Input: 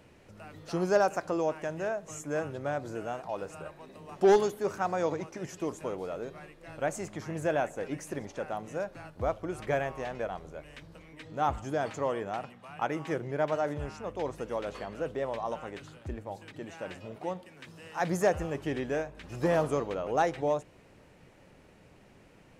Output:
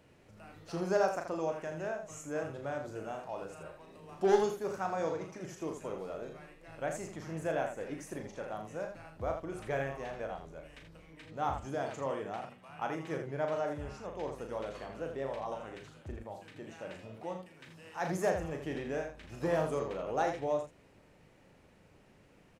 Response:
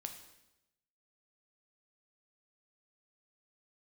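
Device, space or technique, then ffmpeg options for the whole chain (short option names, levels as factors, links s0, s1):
slapback doubling: -filter_complex "[0:a]asplit=3[s0][s1][s2];[s1]adelay=37,volume=0.501[s3];[s2]adelay=81,volume=0.422[s4];[s0][s3][s4]amix=inputs=3:normalize=0,volume=0.501"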